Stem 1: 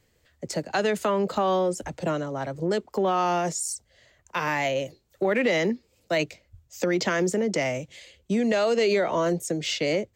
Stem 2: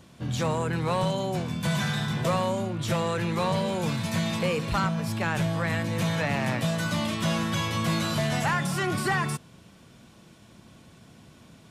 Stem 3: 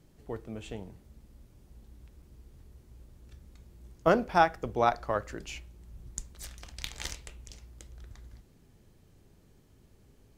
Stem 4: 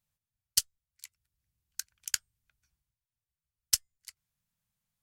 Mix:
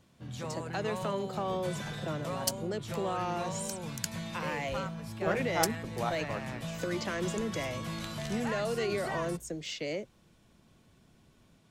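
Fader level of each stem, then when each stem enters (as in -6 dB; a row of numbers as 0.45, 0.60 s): -10.5, -12.0, -9.0, -5.5 dB; 0.00, 0.00, 1.20, 1.90 s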